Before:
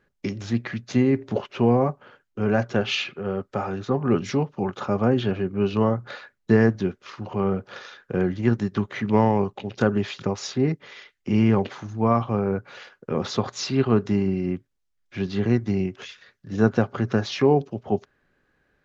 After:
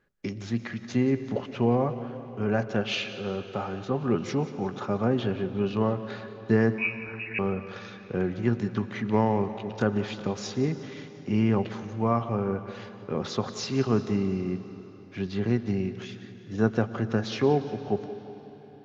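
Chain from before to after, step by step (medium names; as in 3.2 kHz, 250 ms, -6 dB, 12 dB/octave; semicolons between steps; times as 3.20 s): two-band feedback delay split 310 Hz, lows 104 ms, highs 179 ms, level -16 dB; 6.78–7.39 s: frequency inversion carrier 2.7 kHz; algorithmic reverb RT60 4.2 s, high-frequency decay 0.85×, pre-delay 75 ms, DRR 13 dB; trim -4.5 dB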